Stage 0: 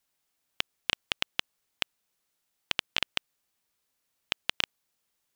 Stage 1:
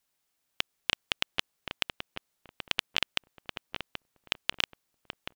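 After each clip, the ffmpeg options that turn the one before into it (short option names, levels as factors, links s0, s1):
-filter_complex "[0:a]asplit=2[s0][s1];[s1]adelay=780,lowpass=f=1100:p=1,volume=0.708,asplit=2[s2][s3];[s3]adelay=780,lowpass=f=1100:p=1,volume=0.28,asplit=2[s4][s5];[s5]adelay=780,lowpass=f=1100:p=1,volume=0.28,asplit=2[s6][s7];[s7]adelay=780,lowpass=f=1100:p=1,volume=0.28[s8];[s0][s2][s4][s6][s8]amix=inputs=5:normalize=0"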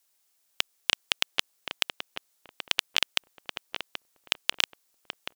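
-af "bass=f=250:g=-11,treble=f=4000:g=7,volume=1.26"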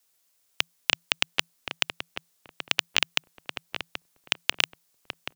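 -af "afreqshift=-170,volume=1.19"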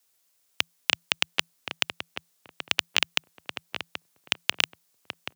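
-af "highpass=f=76:w=0.5412,highpass=f=76:w=1.3066"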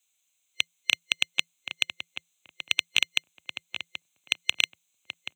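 -af "superequalizer=7b=0.562:12b=3.55:13b=3.16:14b=0.501:15b=3.55,volume=0.335"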